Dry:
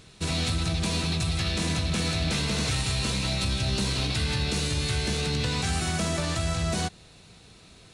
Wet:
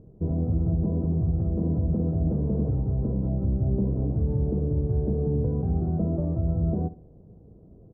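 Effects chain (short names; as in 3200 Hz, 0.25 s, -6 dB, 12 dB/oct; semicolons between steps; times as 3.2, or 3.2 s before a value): inverse Chebyshev low-pass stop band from 3200 Hz, stop band 80 dB; feedback echo 66 ms, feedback 29%, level -16.5 dB; gain +4 dB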